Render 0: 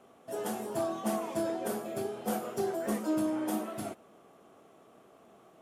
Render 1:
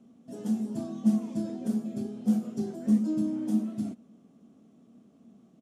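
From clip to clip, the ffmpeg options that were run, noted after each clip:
ffmpeg -i in.wav -af "firequalizer=gain_entry='entry(110,0);entry(230,14);entry(350,-6);entry(810,-14);entry(1300,-15);entry(3900,-7);entry(6000,-4);entry(13000,-17)':delay=0.05:min_phase=1" out.wav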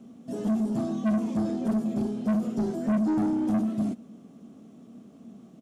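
ffmpeg -i in.wav -filter_complex "[0:a]acrossover=split=3500[link_01][link_02];[link_02]acompressor=threshold=-59dB:ratio=4:attack=1:release=60[link_03];[link_01][link_03]amix=inputs=2:normalize=0,asoftclip=type=tanh:threshold=-30dB,volume=8.5dB" out.wav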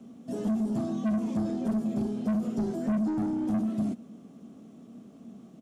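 ffmpeg -i in.wav -filter_complex "[0:a]acrossover=split=180[link_01][link_02];[link_02]acompressor=threshold=-29dB:ratio=6[link_03];[link_01][link_03]amix=inputs=2:normalize=0" out.wav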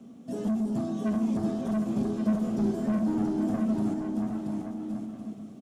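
ffmpeg -i in.wav -af "aecho=1:1:680|1122|1409|1596|1717:0.631|0.398|0.251|0.158|0.1" out.wav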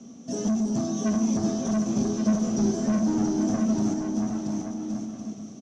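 ffmpeg -i in.wav -af "lowpass=frequency=6000:width_type=q:width=15,volume=3dB" out.wav

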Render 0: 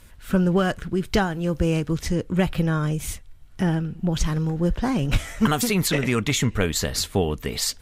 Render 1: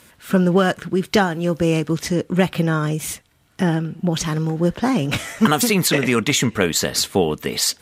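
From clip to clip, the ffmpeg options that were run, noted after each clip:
ffmpeg -i in.wav -af "highpass=170,volume=5.5dB" out.wav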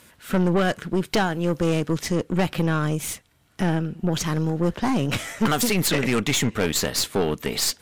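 ffmpeg -i in.wav -af "aeval=exprs='(tanh(6.31*val(0)+0.55)-tanh(0.55))/6.31':channel_layout=same" out.wav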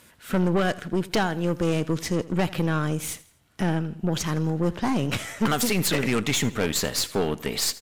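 ffmpeg -i in.wav -af "aecho=1:1:82|164|246:0.112|0.0471|0.0198,volume=-2dB" out.wav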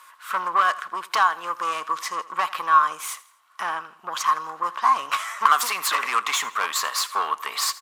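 ffmpeg -i in.wav -af "highpass=frequency=1100:width_type=q:width=12" out.wav

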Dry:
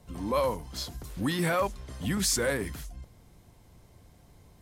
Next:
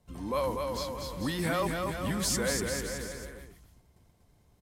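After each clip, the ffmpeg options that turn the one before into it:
ffmpeg -i in.wav -filter_complex "[0:a]agate=range=-8dB:threshold=-53dB:ratio=16:detection=peak,asplit=2[link_01][link_02];[link_02]aecho=0:1:240|444|617.4|764.8|890.1:0.631|0.398|0.251|0.158|0.1[link_03];[link_01][link_03]amix=inputs=2:normalize=0,volume=-3.5dB" out.wav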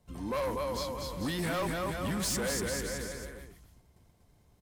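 ffmpeg -i in.wav -af "asoftclip=type=hard:threshold=-28.5dB" out.wav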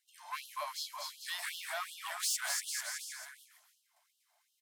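ffmpeg -i in.wav -af "afftfilt=real='re*gte(b*sr/1024,570*pow(2800/570,0.5+0.5*sin(2*PI*2.7*pts/sr)))':imag='im*gte(b*sr/1024,570*pow(2800/570,0.5+0.5*sin(2*PI*2.7*pts/sr)))':win_size=1024:overlap=0.75" out.wav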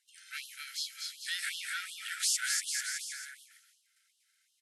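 ffmpeg -i in.wav -af "afftfilt=real='re*between(b*sr/4096,1300,12000)':imag='im*between(b*sr/4096,1300,12000)':win_size=4096:overlap=0.75,volume=4dB" out.wav

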